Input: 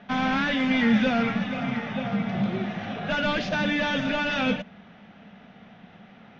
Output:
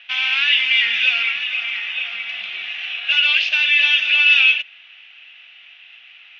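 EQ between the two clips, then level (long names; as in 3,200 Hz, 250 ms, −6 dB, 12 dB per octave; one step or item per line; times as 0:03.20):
high-pass with resonance 2,700 Hz, resonance Q 6.5
high-frequency loss of the air 80 metres
+7.0 dB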